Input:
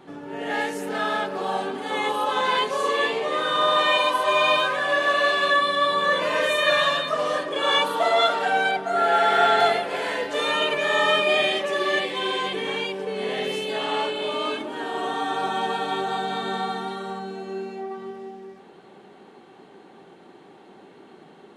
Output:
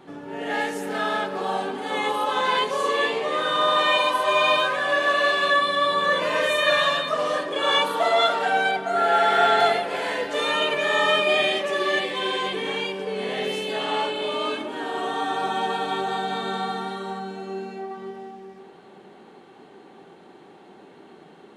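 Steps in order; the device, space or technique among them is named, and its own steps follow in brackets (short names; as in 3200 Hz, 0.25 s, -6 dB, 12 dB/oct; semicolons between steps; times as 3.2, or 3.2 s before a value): compressed reverb return (on a send at -10 dB: reverb RT60 1.8 s, pre-delay 55 ms + compressor, threshold -27 dBFS, peak gain reduction 14 dB)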